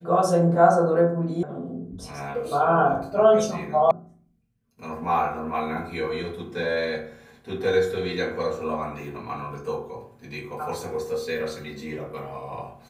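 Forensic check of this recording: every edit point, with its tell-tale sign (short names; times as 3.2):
1.43 sound cut off
3.91 sound cut off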